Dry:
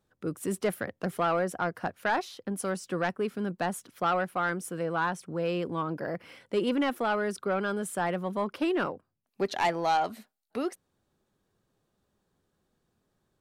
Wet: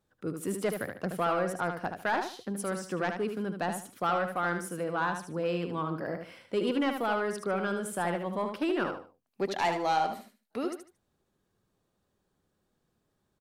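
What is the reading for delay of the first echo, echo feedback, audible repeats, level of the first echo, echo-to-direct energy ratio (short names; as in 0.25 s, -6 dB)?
75 ms, 26%, 3, -6.5 dB, -6.0 dB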